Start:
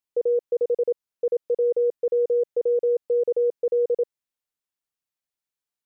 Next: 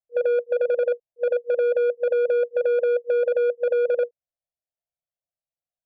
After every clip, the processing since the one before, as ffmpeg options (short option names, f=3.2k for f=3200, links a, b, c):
-af "lowpass=f=680:t=q:w=5.6,adynamicsmooth=sensitivity=0.5:basefreq=530,afftfilt=real='re*(1-between(b*sr/4096,180,480))':imag='im*(1-between(b*sr/4096,180,480))':win_size=4096:overlap=0.75"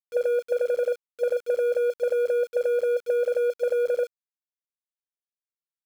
-af "acompressor=threshold=-28dB:ratio=4,aeval=exprs='val(0)*gte(abs(val(0)),0.00596)':c=same,volume=5dB"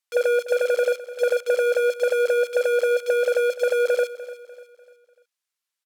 -af "crystalizer=i=8:c=0,bandpass=f=1.2k:t=q:w=0.56:csg=0,aecho=1:1:297|594|891|1188:0.168|0.0705|0.0296|0.0124,volume=5.5dB"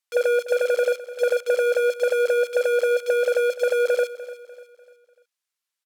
-af anull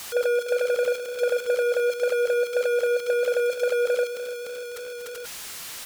-af "aeval=exprs='val(0)+0.5*0.0501*sgn(val(0))':c=same,volume=-4dB"